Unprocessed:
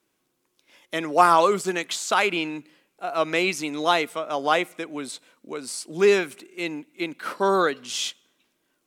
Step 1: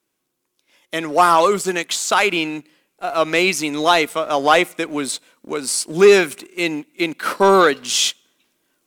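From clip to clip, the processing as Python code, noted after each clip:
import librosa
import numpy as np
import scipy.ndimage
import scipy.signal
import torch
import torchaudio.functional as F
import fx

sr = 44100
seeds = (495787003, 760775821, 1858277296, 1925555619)

y = fx.high_shelf(x, sr, hz=5400.0, db=4.5)
y = fx.rider(y, sr, range_db=4, speed_s=2.0)
y = fx.leveller(y, sr, passes=1)
y = y * librosa.db_to_amplitude(3.0)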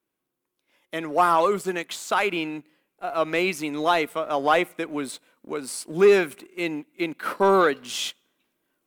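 y = fx.peak_eq(x, sr, hz=6200.0, db=-9.0, octaves=1.8)
y = y * librosa.db_to_amplitude(-5.5)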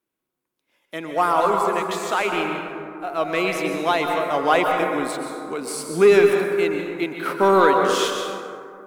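y = fx.rider(x, sr, range_db=4, speed_s=2.0)
y = fx.rev_plate(y, sr, seeds[0], rt60_s=2.4, hf_ratio=0.35, predelay_ms=110, drr_db=2.0)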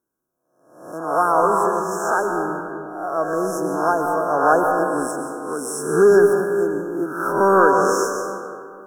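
y = fx.spec_swells(x, sr, rise_s=0.69)
y = fx.brickwall_bandstop(y, sr, low_hz=1700.0, high_hz=5200.0)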